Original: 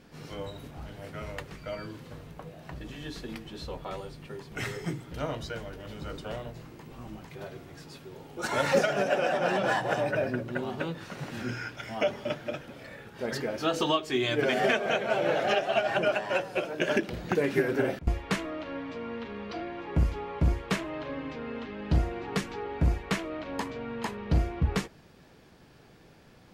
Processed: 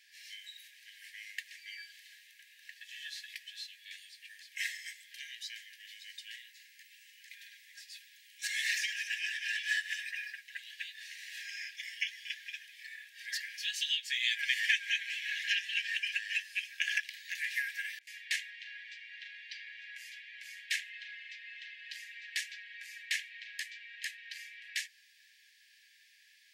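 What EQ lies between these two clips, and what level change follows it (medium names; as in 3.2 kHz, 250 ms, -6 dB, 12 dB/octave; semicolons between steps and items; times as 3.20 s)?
brick-wall FIR high-pass 1.6 kHz; +1.5 dB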